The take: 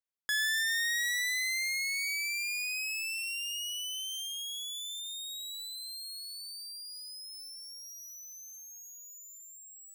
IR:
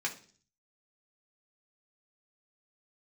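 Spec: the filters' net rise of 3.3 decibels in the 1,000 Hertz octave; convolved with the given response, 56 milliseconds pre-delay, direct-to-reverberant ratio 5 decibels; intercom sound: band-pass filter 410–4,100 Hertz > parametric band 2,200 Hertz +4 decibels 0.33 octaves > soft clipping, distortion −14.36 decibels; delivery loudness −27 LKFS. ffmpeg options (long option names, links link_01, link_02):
-filter_complex "[0:a]equalizer=frequency=1000:width_type=o:gain=4.5,asplit=2[link_01][link_02];[1:a]atrim=start_sample=2205,adelay=56[link_03];[link_02][link_03]afir=irnorm=-1:irlink=0,volume=-9.5dB[link_04];[link_01][link_04]amix=inputs=2:normalize=0,highpass=410,lowpass=4100,equalizer=frequency=2200:width_type=o:width=0.33:gain=4,asoftclip=threshold=-27.5dB,volume=5.5dB"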